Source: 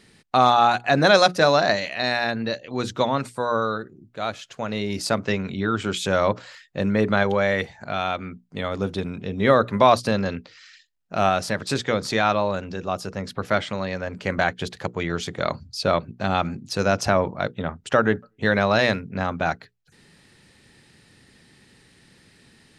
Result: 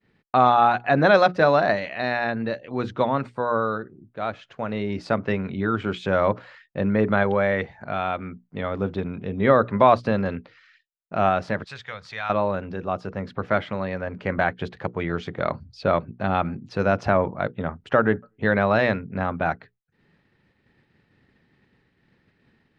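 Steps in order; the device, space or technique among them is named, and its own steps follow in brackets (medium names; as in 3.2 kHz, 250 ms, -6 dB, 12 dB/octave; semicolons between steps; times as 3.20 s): hearing-loss simulation (low-pass 2.2 kHz 12 dB/octave; expander -49 dBFS); 11.64–12.30 s: amplifier tone stack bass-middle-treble 10-0-10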